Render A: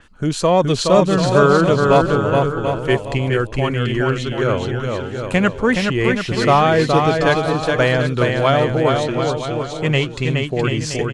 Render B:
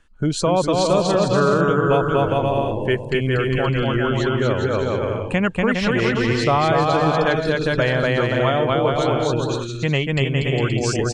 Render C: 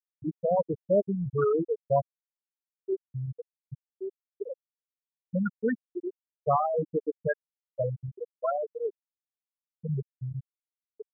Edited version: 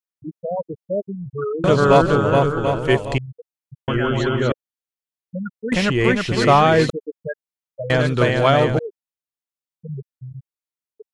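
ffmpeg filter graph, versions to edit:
-filter_complex "[0:a]asplit=3[s0][s1][s2];[2:a]asplit=5[s3][s4][s5][s6][s7];[s3]atrim=end=1.642[s8];[s0]atrim=start=1.638:end=3.182[s9];[s4]atrim=start=3.178:end=3.882[s10];[1:a]atrim=start=3.878:end=4.522[s11];[s5]atrim=start=4.518:end=5.722[s12];[s1]atrim=start=5.718:end=6.902[s13];[s6]atrim=start=6.898:end=7.902[s14];[s2]atrim=start=7.898:end=8.792[s15];[s7]atrim=start=8.788[s16];[s8][s9]acrossfade=d=0.004:c1=hsin:c2=hsin[s17];[s17][s10]acrossfade=d=0.004:c1=hsin:c2=hsin[s18];[s18][s11]acrossfade=d=0.004:c1=hsin:c2=hsin[s19];[s19][s12]acrossfade=d=0.004:c1=hsin:c2=hsin[s20];[s20][s13]acrossfade=d=0.004:c1=hsin:c2=hsin[s21];[s21][s14]acrossfade=d=0.004:c1=hsin:c2=hsin[s22];[s22][s15]acrossfade=d=0.004:c1=hsin:c2=hsin[s23];[s23][s16]acrossfade=d=0.004:c1=hsin:c2=hsin"

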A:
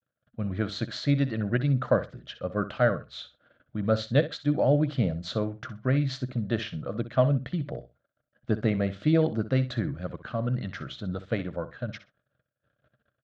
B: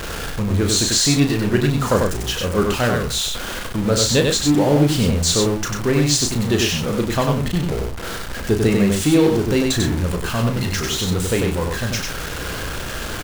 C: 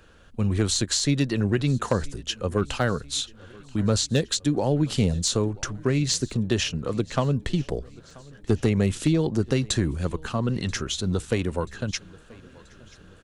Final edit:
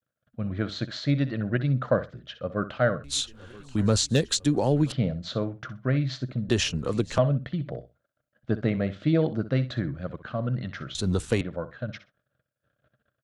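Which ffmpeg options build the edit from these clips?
-filter_complex "[2:a]asplit=3[s0][s1][s2];[0:a]asplit=4[s3][s4][s5][s6];[s3]atrim=end=3.042[s7];[s0]atrim=start=3.038:end=4.922[s8];[s4]atrim=start=4.918:end=6.492[s9];[s1]atrim=start=6.488:end=7.182[s10];[s5]atrim=start=7.178:end=10.952[s11];[s2]atrim=start=10.948:end=11.412[s12];[s6]atrim=start=11.408[s13];[s7][s8]acrossfade=d=0.004:c1=hsin:c2=hsin[s14];[s14][s9]acrossfade=d=0.004:c1=hsin:c2=hsin[s15];[s15][s10]acrossfade=d=0.004:c1=hsin:c2=hsin[s16];[s16][s11]acrossfade=d=0.004:c1=hsin:c2=hsin[s17];[s17][s12]acrossfade=d=0.004:c1=hsin:c2=hsin[s18];[s18][s13]acrossfade=d=0.004:c1=hsin:c2=hsin"

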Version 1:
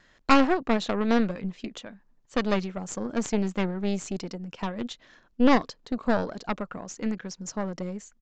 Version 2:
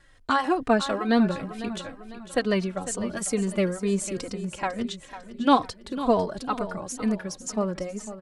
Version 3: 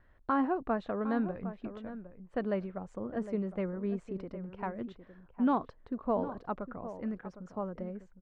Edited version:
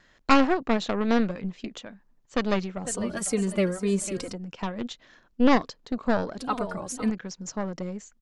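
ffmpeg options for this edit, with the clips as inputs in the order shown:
-filter_complex "[1:a]asplit=2[s0][s1];[0:a]asplit=3[s2][s3][s4];[s2]atrim=end=2.852[s5];[s0]atrim=start=2.848:end=4.332[s6];[s3]atrim=start=4.328:end=6.392[s7];[s1]atrim=start=6.388:end=7.102[s8];[s4]atrim=start=7.098[s9];[s5][s6]acrossfade=d=0.004:c1=hsin:c2=hsin[s10];[s10][s7]acrossfade=d=0.004:c1=hsin:c2=hsin[s11];[s11][s8]acrossfade=d=0.004:c1=hsin:c2=hsin[s12];[s12][s9]acrossfade=d=0.004:c1=hsin:c2=hsin"

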